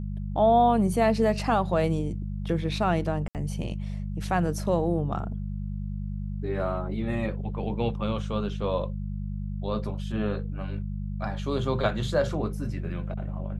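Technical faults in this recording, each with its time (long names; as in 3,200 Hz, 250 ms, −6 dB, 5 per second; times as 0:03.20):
mains hum 50 Hz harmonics 4 −32 dBFS
0:03.28–0:03.35: drop-out 68 ms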